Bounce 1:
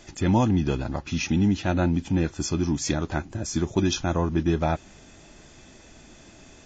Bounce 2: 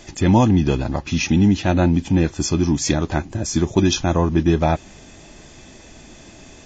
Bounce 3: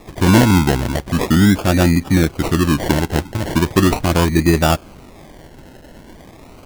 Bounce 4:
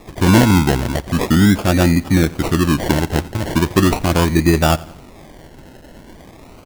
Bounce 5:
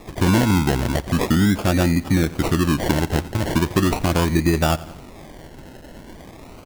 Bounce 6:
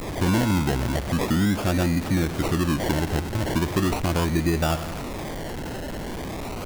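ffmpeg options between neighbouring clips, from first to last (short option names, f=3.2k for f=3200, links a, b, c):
-af "equalizer=f=1.4k:w=6.8:g=-5.5,volume=6.5dB"
-af "acrusher=samples=29:mix=1:aa=0.000001:lfo=1:lforange=17.4:lforate=0.39,volume=3dB"
-af "aecho=1:1:87|174|261:0.0891|0.0428|0.0205"
-af "acompressor=threshold=-16dB:ratio=2.5"
-af "aeval=exprs='val(0)+0.5*0.0944*sgn(val(0))':c=same,volume=-6.5dB"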